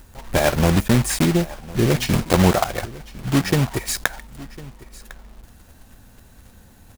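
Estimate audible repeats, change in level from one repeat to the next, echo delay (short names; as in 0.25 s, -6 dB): 1, no steady repeat, 1.053 s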